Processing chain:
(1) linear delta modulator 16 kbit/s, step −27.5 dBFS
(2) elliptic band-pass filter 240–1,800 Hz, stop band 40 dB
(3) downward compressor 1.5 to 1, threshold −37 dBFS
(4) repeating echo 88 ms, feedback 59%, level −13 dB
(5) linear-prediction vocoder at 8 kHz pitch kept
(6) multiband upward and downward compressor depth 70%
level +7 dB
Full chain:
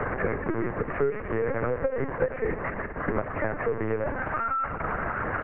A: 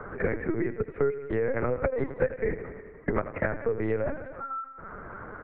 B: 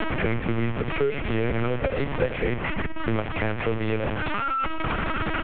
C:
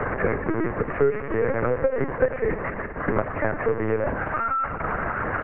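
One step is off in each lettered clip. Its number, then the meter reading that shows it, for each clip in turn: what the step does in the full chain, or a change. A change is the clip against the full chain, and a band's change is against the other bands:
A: 1, 1 kHz band −6.0 dB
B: 2, 125 Hz band +5.0 dB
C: 3, average gain reduction 2.5 dB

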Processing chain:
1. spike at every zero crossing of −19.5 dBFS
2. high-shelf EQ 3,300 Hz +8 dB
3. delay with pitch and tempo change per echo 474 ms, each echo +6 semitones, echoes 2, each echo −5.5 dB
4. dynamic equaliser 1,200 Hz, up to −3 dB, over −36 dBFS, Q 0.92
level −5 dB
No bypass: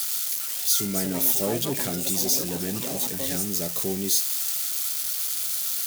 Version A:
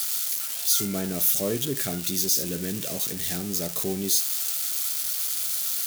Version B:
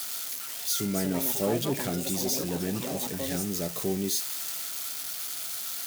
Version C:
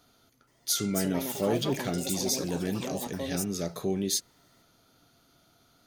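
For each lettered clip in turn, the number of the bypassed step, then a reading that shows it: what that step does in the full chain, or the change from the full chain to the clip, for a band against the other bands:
3, 1 kHz band −3.0 dB
2, 8 kHz band −6.5 dB
1, distortion level −2 dB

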